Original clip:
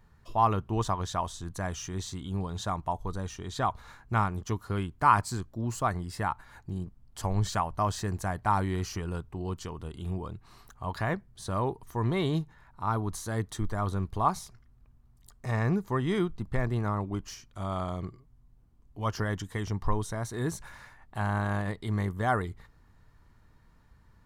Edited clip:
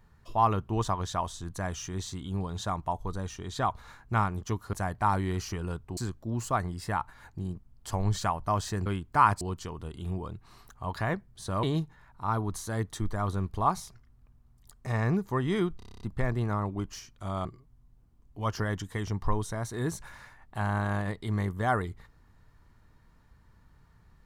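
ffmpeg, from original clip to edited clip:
-filter_complex "[0:a]asplit=15[a][b][c][d][e][f][g][h][i][j][k][l][m][n][o];[a]atrim=end=4.732[p];[b]atrim=start=8.168:end=9.412[q];[c]atrim=start=5.278:end=8.172[r];[d]atrim=start=4.728:end=5.282[s];[e]atrim=start=9.408:end=11.632[t];[f]atrim=start=12.218:end=16.392[u];[g]atrim=start=16.358:end=16.392[v];[h]atrim=start=16.358:end=16.392[w];[i]atrim=start=16.358:end=16.392[x];[j]atrim=start=16.358:end=16.392[y];[k]atrim=start=16.358:end=16.392[z];[l]atrim=start=16.358:end=16.392[aa];[m]atrim=start=16.358:end=16.392[ab];[n]atrim=start=16.358:end=17.802[ac];[o]atrim=start=18.048[ad];[p][q]acrossfade=d=0.004:c1=hsin:c2=hsin[ae];[ae][r]acrossfade=d=0.004:c1=hsin:c2=hsin[af];[af][s]acrossfade=d=0.004:c1=hsin:c2=hsin[ag];[ag][t]acrossfade=d=0.004:c1=hsin:c2=hsin[ah];[ah][u]acrossfade=d=0.004:c1=hsin:c2=hsin[ai];[ai][v]acrossfade=d=0.004:c1=hsin:c2=hsin[aj];[aj][w]acrossfade=d=0.004:c1=hsin:c2=hsin[ak];[ak][x]acrossfade=d=0.004:c1=hsin:c2=hsin[al];[al][y]acrossfade=d=0.004:c1=hsin:c2=hsin[am];[am][z]acrossfade=d=0.004:c1=hsin:c2=hsin[an];[an][aa]acrossfade=d=0.004:c1=hsin:c2=hsin[ao];[ao][ab]acrossfade=d=0.004:c1=hsin:c2=hsin[ap];[ap][ac]acrossfade=d=0.004:c1=hsin:c2=hsin[aq];[aq][ad]acrossfade=d=0.004:c1=hsin:c2=hsin"

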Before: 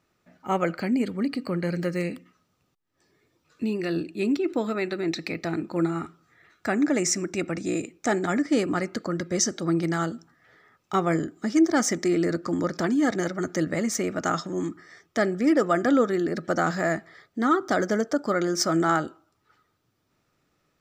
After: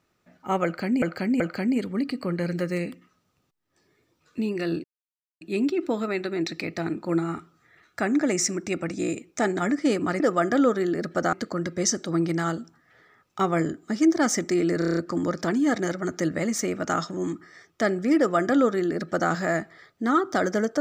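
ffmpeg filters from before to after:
-filter_complex "[0:a]asplit=12[a][b][c][d][e][f][g][h][i][j][k][l];[a]atrim=end=1.022[m];[b]atrim=start=0.638:end=1.022[n];[c]atrim=start=0.638:end=4.08,asetpts=PTS-STARTPTS,afade=t=out:st=3.438:d=0.004:c=hsin,apad=pad_dur=0.57[o];[d]atrim=start=4.08:end=8.872,asetpts=PTS-STARTPTS,afade=t=in:d=0.004:c=hsin[p];[e]atrim=start=15.528:end=16.662[q];[f]atrim=start=8.868:end=12.362[r];[g]atrim=start=12.328:end=12.362[s];[h]atrim=start=12.328:end=12.362[t];[i]atrim=start=12.328:end=12.362[u];[j]atrim=start=12.328:end=12.362[v];[k]atrim=start=12.328:end=12.362[w];[l]atrim=start=12.328[x];[m][n]acrossfade=d=0.004:c1=hsin:c2=hsin[y];[o][p]concat=n=2:v=0:a=1[z];[y][z]acrossfade=d=0.004:c1=hsin:c2=hsin[aa];[aa][q]acrossfade=d=0.004:c1=hsin:c2=hsin[ab];[ab][r]acrossfade=d=0.004:c1=hsin:c2=hsin[ac];[ac][s]acrossfade=d=0.004:c1=hsin:c2=hsin[ad];[ad][t]acrossfade=d=0.004:c1=hsin:c2=hsin[ae];[ae][u]acrossfade=d=0.004:c1=hsin:c2=hsin[af];[af][v]acrossfade=d=0.004:c1=hsin:c2=hsin[ag];[ag][w]acrossfade=d=0.004:c1=hsin:c2=hsin[ah];[ah][x]acrossfade=d=0.004:c1=hsin:c2=hsin"

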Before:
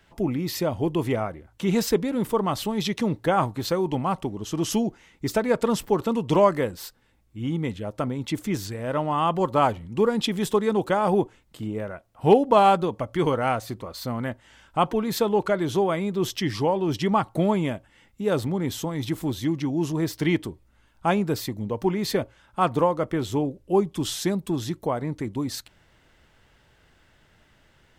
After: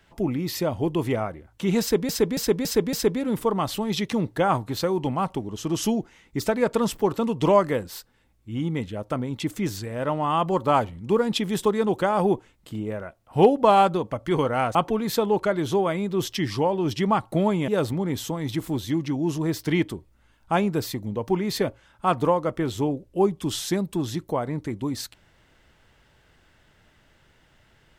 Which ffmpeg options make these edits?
-filter_complex "[0:a]asplit=7[a][b][c][d][e][f][g];[a]atrim=end=2.092[h];[b]atrim=start=1.808:end=2.092[i];[c]atrim=start=1.808:end=2.092[j];[d]atrim=start=1.808:end=2.092[k];[e]atrim=start=1.808:end=13.632[l];[f]atrim=start=14.778:end=17.712[m];[g]atrim=start=18.218[n];[h][i]acrossfade=d=0.004:c1=hsin:c2=hsin[o];[o][j]acrossfade=d=0.004:c1=hsin:c2=hsin[p];[p][k]acrossfade=d=0.004:c1=hsin:c2=hsin[q];[q][l]acrossfade=d=0.004:c1=hsin:c2=hsin[r];[r][m]acrossfade=d=0.004:c1=hsin:c2=hsin[s];[s][n]acrossfade=d=0.004:c1=hsin:c2=hsin"

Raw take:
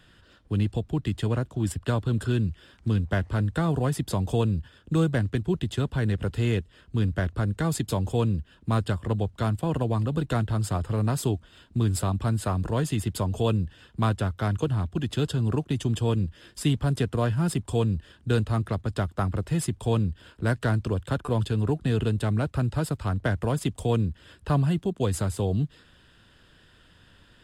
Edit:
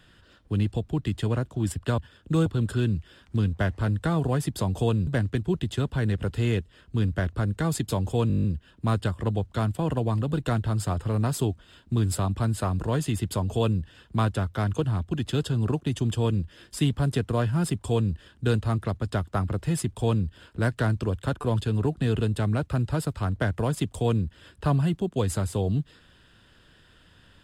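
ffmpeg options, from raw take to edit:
-filter_complex "[0:a]asplit=12[a][b][c][d][e][f][g][h][i][j][k][l];[a]atrim=end=1.982[m];[b]atrim=start=4.588:end=5.072[n];[c]atrim=start=1.978:end=4.592[o];[d]atrim=start=5.068:end=8.302[p];[e]atrim=start=8.278:end=8.302[q];[f]atrim=start=8.278:end=8.302[r];[g]atrim=start=8.278:end=8.302[s];[h]atrim=start=8.278:end=8.302[t];[i]atrim=start=8.278:end=8.302[u];[j]atrim=start=8.278:end=8.302[v];[k]atrim=start=8.278:end=8.302[w];[l]atrim=start=8.278[x];[m][n]acrossfade=d=0.004:c1=hsin:c2=hsin[y];[y][o]acrossfade=d=0.004:c1=hsin:c2=hsin[z];[z][p]acrossfade=d=0.004:c1=hsin:c2=hsin[aa];[aa][q]acrossfade=d=0.004:c1=hsin:c2=hsin[ab];[ab][r]acrossfade=d=0.004:c1=hsin:c2=hsin[ac];[ac][s]acrossfade=d=0.004:c1=hsin:c2=hsin[ad];[ad][t]acrossfade=d=0.004:c1=hsin:c2=hsin[ae];[ae][u]acrossfade=d=0.004:c1=hsin:c2=hsin[af];[af][v]acrossfade=d=0.004:c1=hsin:c2=hsin[ag];[ag][w]acrossfade=d=0.004:c1=hsin:c2=hsin[ah];[ah][x]acrossfade=d=0.004:c1=hsin:c2=hsin"

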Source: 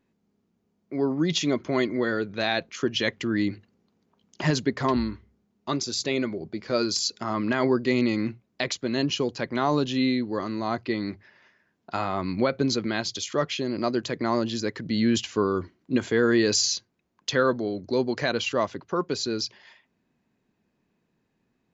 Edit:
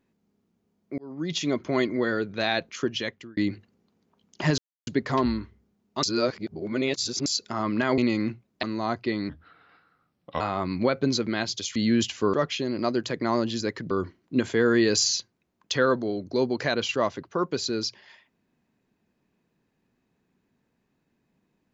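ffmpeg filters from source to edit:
-filter_complex "[0:a]asplit=13[a][b][c][d][e][f][g][h][i][j][k][l][m];[a]atrim=end=0.98,asetpts=PTS-STARTPTS,afade=t=out:st=0.976:d=0.004:c=hsin[n];[b]atrim=start=0.98:end=3.37,asetpts=PTS-STARTPTS,afade=t=in:d=0.83:c=qsin,afade=t=out:st=1.79:d=0.6[o];[c]atrim=start=3.37:end=4.58,asetpts=PTS-STARTPTS,afade=t=in:d=0.004:c=hsin,afade=t=out:st=1.206:d=0.004:c=hsin,apad=pad_dur=0.29[p];[d]atrim=start=4.58:end=5.742,asetpts=PTS-STARTPTS,afade=t=in:d=0.004:c=hsin[q];[e]atrim=start=5.738:end=6.972,asetpts=PTS-STARTPTS,areverse[r];[f]atrim=start=6.968:end=7.692[s];[g]atrim=start=7.968:end=8.622[t];[h]atrim=start=10.448:end=11.114[u];[i]atrim=start=11.11:end=11.98,asetpts=PTS-STARTPTS,asetrate=34398,aresample=44100,atrim=end_sample=49188,asetpts=PTS-STARTPTS[v];[j]atrim=start=11.976:end=13.332[w];[k]atrim=start=14.898:end=15.482[x];[l]atrim=start=13.328:end=14.902[y];[m]atrim=start=15.478[z];[n][o][p][q]concat=n=4:v=0:a=1[aa];[aa][r]acrossfade=d=0.004:c1=hsin:c2=hsin[ab];[ab][s]acrossfade=d=0.004:c1=hsin:c2=hsin[ac];[ac][t]acrossfade=d=0.004:c1=hsin:c2=hsin[ad];[ad][u]acrossfade=d=0.004:c1=hsin:c2=hsin[ae];[ae][v]acrossfade=d=0.004:c1=hsin:c2=hsin[af];[af][w]acrossfade=d=0.004:c1=hsin:c2=hsin[ag];[ag][x]acrossfade=d=0.004:c1=hsin:c2=hsin[ah];[ah][y]acrossfade=d=0.004:c1=hsin:c2=hsin[ai];[ai][z]acrossfade=d=0.004:c1=hsin:c2=hsin"

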